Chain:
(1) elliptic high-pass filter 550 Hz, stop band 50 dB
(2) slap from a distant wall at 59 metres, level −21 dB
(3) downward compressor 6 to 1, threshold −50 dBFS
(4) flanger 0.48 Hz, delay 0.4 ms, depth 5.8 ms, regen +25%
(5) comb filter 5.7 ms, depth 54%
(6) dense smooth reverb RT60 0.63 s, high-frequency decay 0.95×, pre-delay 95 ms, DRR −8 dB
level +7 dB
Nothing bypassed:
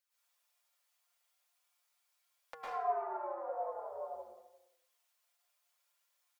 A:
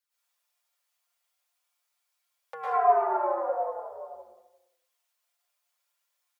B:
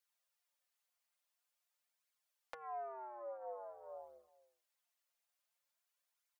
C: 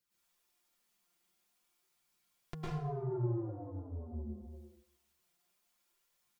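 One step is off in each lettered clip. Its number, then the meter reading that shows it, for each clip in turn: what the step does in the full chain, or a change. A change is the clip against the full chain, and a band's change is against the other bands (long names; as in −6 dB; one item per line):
3, average gain reduction 8.0 dB
6, change in crest factor +3.0 dB
1, 250 Hz band +24.0 dB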